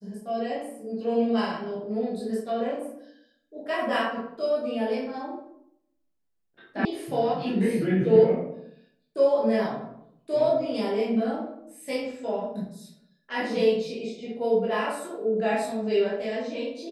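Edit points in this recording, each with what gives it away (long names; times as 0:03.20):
0:06.85: cut off before it has died away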